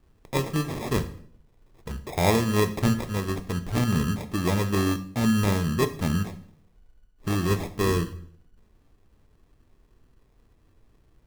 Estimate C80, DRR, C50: 17.5 dB, 8.5 dB, 14.0 dB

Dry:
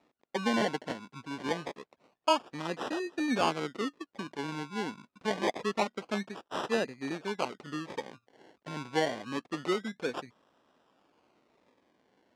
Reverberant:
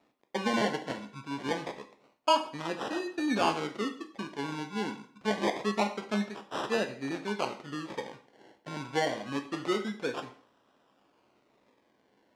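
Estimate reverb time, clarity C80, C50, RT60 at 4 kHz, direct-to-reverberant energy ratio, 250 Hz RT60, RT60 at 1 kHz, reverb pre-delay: 0.50 s, 15.5 dB, 11.5 dB, 0.45 s, 6.0 dB, 0.50 s, 0.45 s, 5 ms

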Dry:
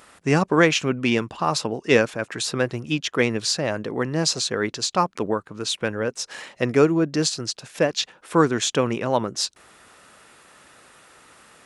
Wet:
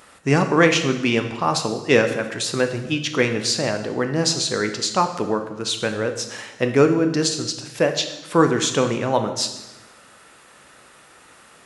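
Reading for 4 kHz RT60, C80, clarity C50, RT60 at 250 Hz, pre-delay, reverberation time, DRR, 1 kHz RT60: 0.95 s, 11.5 dB, 9.5 dB, 1.2 s, 9 ms, 1.0 s, 6.0 dB, 0.95 s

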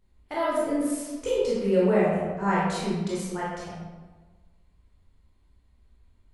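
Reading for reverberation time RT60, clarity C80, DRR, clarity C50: 1.3 s, 1.5 dB, -8.0 dB, -1.5 dB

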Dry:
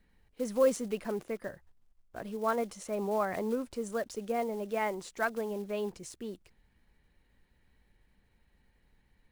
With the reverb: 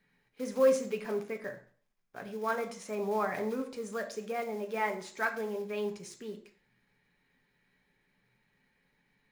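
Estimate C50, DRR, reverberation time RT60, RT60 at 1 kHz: 11.5 dB, 4.0 dB, 0.45 s, 0.45 s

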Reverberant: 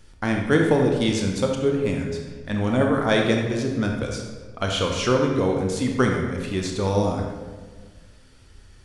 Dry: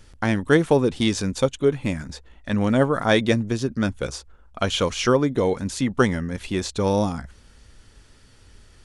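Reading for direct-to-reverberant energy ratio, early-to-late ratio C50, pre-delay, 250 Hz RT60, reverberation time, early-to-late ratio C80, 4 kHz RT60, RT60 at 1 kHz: 1.0 dB, 3.0 dB, 27 ms, 1.8 s, 1.5 s, 5.0 dB, 1.0 s, 1.4 s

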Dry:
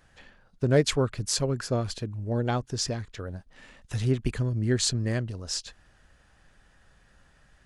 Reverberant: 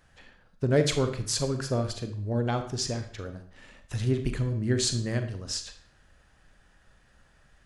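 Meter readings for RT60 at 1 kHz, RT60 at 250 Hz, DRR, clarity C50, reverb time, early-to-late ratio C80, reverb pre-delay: 0.55 s, 0.55 s, 7.5 dB, 10.0 dB, 0.55 s, 14.0 dB, 37 ms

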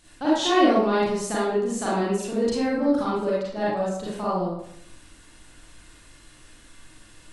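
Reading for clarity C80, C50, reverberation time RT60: 3.0 dB, -2.5 dB, 0.70 s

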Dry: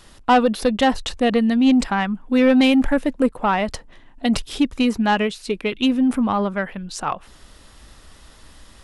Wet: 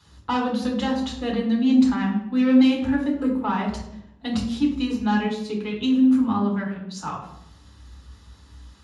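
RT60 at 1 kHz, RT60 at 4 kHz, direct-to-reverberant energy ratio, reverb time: 0.70 s, 0.55 s, -3.0 dB, 0.80 s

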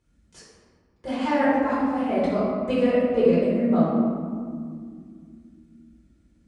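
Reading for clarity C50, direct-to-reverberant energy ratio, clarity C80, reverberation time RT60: -2.0 dB, -10.5 dB, 0.5 dB, 2.2 s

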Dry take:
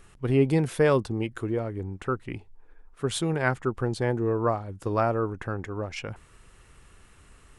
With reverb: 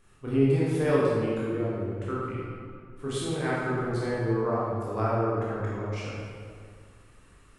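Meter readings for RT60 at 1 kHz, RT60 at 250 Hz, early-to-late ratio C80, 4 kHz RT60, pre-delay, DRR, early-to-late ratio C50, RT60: 2.0 s, 2.1 s, -1.0 dB, 1.3 s, 15 ms, -8.0 dB, -3.0 dB, 2.0 s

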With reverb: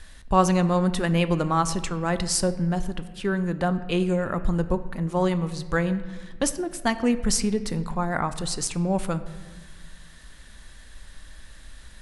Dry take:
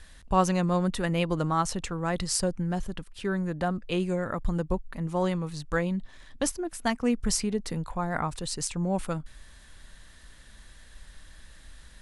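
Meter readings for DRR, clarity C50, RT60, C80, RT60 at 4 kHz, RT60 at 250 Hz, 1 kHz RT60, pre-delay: 11.5 dB, 13.5 dB, 1.4 s, 15.0 dB, 0.95 s, 1.9 s, 1.3 s, 3 ms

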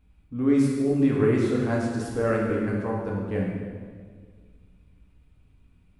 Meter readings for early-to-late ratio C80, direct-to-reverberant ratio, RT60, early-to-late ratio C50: 3.0 dB, -3.5 dB, 1.7 s, 1.0 dB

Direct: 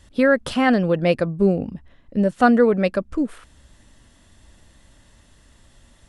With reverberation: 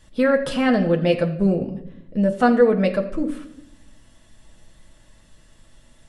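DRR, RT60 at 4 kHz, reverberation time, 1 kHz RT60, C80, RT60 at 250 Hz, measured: 1.5 dB, 0.60 s, 0.75 s, 0.65 s, 14.0 dB, 1.3 s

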